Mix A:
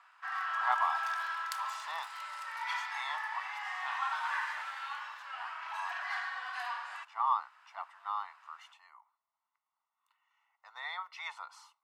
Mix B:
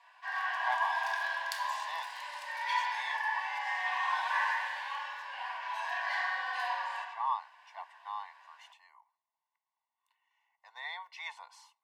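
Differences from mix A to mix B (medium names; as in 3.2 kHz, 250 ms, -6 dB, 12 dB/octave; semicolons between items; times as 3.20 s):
first sound: send on; master: add Butterworth band-stop 1.3 kHz, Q 3.1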